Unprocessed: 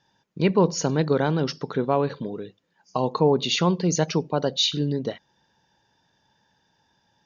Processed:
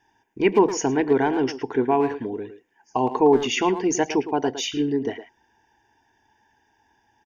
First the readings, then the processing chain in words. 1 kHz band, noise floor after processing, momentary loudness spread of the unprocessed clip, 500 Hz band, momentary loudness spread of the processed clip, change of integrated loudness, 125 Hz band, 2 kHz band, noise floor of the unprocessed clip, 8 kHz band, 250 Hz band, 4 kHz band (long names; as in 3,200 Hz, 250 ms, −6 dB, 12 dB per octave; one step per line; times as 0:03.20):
+4.0 dB, −67 dBFS, 13 LU, +2.5 dB, 12 LU, +1.5 dB, −9.5 dB, +4.0 dB, −69 dBFS, can't be measured, +2.0 dB, −5.5 dB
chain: phaser with its sweep stopped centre 830 Hz, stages 8
far-end echo of a speakerphone 110 ms, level −10 dB
level +5.5 dB